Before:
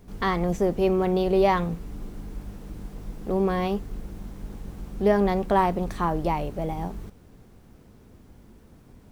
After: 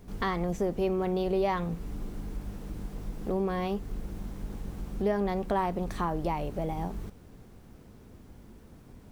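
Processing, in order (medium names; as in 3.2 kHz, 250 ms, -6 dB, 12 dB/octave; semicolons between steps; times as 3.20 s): compression 2:1, threshold -30 dBFS, peak gain reduction 8.5 dB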